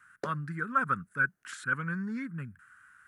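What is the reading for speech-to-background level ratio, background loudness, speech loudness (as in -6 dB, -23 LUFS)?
11.5 dB, -44.0 LUFS, -32.5 LUFS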